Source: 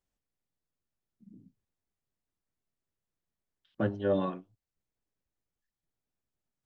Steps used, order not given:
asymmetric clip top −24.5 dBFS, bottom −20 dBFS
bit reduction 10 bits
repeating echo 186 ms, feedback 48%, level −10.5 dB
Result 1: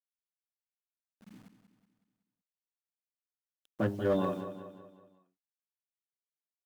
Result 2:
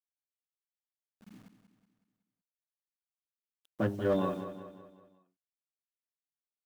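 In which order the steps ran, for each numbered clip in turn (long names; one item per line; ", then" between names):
bit reduction, then repeating echo, then asymmetric clip
asymmetric clip, then bit reduction, then repeating echo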